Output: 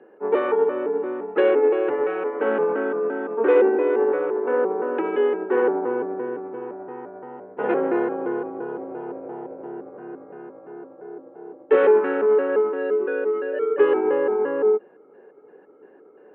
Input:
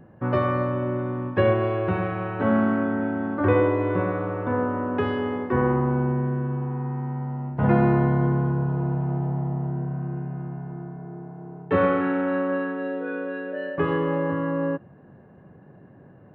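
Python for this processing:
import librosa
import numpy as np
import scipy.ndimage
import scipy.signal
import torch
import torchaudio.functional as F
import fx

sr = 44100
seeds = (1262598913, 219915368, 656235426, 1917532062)

y = fx.pitch_trill(x, sr, semitones=-4.5, every_ms=172)
y = fx.fold_sine(y, sr, drive_db=3, ceiling_db=-7.5)
y = fx.cabinet(y, sr, low_hz=370.0, low_slope=24, high_hz=2900.0, hz=(430.0, 650.0, 1100.0, 2000.0), db=(9, -9, -8, -5))
y = y * 10.0 ** (-1.5 / 20.0)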